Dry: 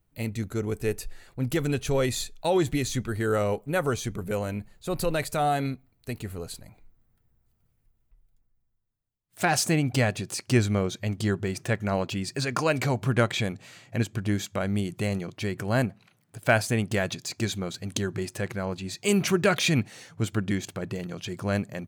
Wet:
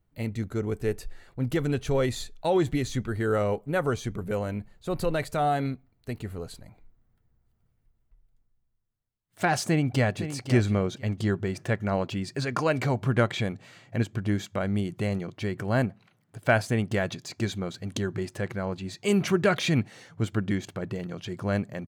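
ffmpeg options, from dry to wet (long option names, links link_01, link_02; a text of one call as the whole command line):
ffmpeg -i in.wav -filter_complex "[0:a]asplit=2[link_01][link_02];[link_02]afade=type=in:start_time=9.66:duration=0.01,afade=type=out:start_time=10.26:duration=0.01,aecho=0:1:510|1020|1530:0.281838|0.0563677|0.0112735[link_03];[link_01][link_03]amix=inputs=2:normalize=0,highshelf=frequency=4700:gain=-10,bandreject=frequency=2500:width=19" out.wav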